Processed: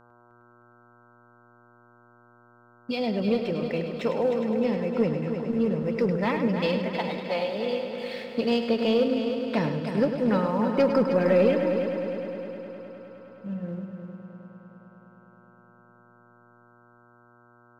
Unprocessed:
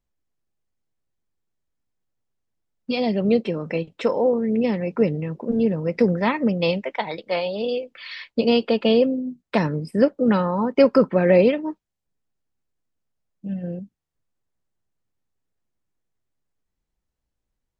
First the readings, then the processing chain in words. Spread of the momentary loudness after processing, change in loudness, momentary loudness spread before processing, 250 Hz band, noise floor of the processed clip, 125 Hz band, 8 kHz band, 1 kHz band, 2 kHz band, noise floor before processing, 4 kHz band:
17 LU, -4.5 dB, 13 LU, -4.0 dB, -57 dBFS, -4.0 dB, n/a, -3.5 dB, -4.0 dB, -82 dBFS, -4.5 dB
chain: sample leveller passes 1; buzz 120 Hz, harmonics 13, -48 dBFS -1 dB/oct; multi-head echo 0.103 s, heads first and third, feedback 71%, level -9 dB; gain -9 dB

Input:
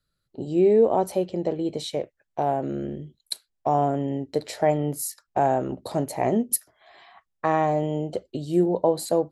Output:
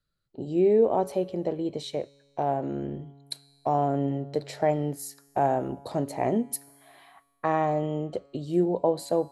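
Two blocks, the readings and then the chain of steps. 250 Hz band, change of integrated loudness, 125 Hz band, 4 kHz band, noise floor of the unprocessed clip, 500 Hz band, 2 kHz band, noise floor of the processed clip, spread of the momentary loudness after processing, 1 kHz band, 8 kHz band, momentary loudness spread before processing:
-2.5 dB, -2.5 dB, -2.0 dB, -4.5 dB, -78 dBFS, -3.0 dB, -3.5 dB, -71 dBFS, 12 LU, -3.0 dB, -8.0 dB, 11 LU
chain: high shelf 6900 Hz -8 dB; resonator 140 Hz, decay 1.7 s, mix 50%; gain +3 dB

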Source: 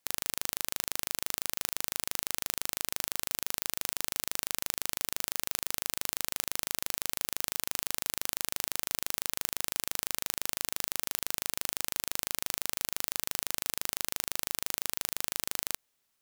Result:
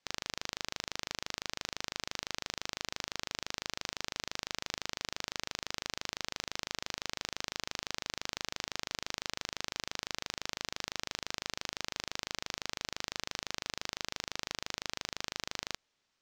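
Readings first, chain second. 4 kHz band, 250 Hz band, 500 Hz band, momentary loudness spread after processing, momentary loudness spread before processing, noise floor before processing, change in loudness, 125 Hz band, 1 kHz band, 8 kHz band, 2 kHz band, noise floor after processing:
-1.0 dB, -1.0 dB, -1.0 dB, 0 LU, 0 LU, -77 dBFS, -7.0 dB, -1.0 dB, -1.0 dB, -9.5 dB, -1.0 dB, -81 dBFS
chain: LPF 6100 Hz 24 dB/oct; soft clip -15.5 dBFS, distortion -18 dB; gain +1.5 dB

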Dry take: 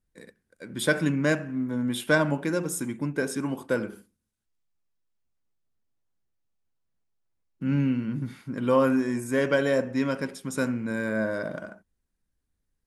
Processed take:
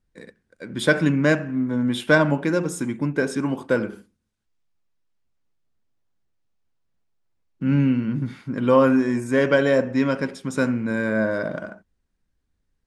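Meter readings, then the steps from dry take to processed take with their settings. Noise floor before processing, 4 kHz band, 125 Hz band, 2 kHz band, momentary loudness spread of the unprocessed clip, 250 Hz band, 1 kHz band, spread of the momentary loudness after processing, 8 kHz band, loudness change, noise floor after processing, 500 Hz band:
-79 dBFS, +4.0 dB, +5.5 dB, +5.0 dB, 10 LU, +5.5 dB, +5.0 dB, 10 LU, -1.5 dB, +5.0 dB, -74 dBFS, +5.5 dB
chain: air absorption 62 m; gain +5.5 dB

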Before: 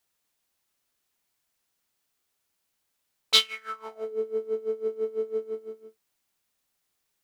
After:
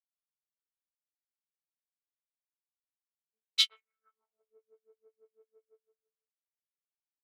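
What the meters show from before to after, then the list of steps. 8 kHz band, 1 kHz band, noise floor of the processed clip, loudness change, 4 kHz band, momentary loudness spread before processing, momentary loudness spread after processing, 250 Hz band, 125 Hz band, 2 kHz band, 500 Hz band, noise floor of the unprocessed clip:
-7.0 dB, -22.5 dB, under -85 dBFS, -1.0 dB, -6.0 dB, 17 LU, 4 LU, under -40 dB, n/a, -9.5 dB, under -35 dB, -78 dBFS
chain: Wiener smoothing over 9 samples; weighting filter A; three bands offset in time lows, highs, mids 0.25/0.37 s, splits 320/1800 Hz; upward expander 2.5:1, over -44 dBFS; gain -4.5 dB

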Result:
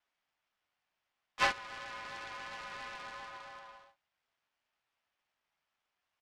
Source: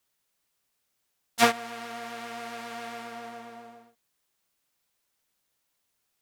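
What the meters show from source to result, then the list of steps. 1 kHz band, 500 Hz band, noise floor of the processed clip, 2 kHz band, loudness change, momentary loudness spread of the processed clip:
-8.0 dB, -13.5 dB, under -85 dBFS, -4.5 dB, -7.5 dB, 19 LU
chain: in parallel at 0 dB: compressor, threshold -43 dBFS, peak gain reduction 26 dB; on the sum: vibrato 2.9 Hz 22 cents; doubler 12 ms -6.5 dB; mistuned SSB +320 Hz 280–3100 Hz; noise-modulated delay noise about 1900 Hz, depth 0.037 ms; gain -7.5 dB

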